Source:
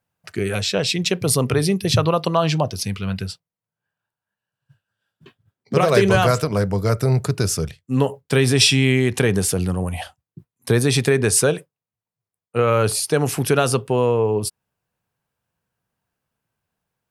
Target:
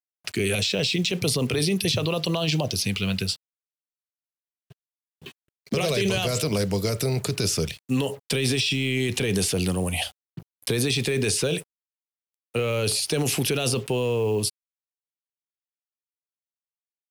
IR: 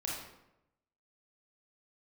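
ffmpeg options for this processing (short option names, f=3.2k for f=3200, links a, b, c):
-filter_complex "[0:a]acrossover=split=4500[a][b];[b]acompressor=threshold=-31dB:ratio=4:attack=1:release=60[c];[a][c]amix=inputs=2:normalize=0,highshelf=f=2k:t=q:w=1.5:g=6.5,alimiter=limit=-13.5dB:level=0:latency=1:release=19,acrossover=split=200|680|2200[d][e][f][g];[d]acompressor=threshold=-32dB:ratio=4[h];[e]acompressor=threshold=-26dB:ratio=4[i];[f]acompressor=threshold=-43dB:ratio=4[j];[g]acompressor=threshold=-26dB:ratio=4[k];[h][i][j][k]amix=inputs=4:normalize=0,acrusher=bits=7:mix=0:aa=0.5,volume=2.5dB"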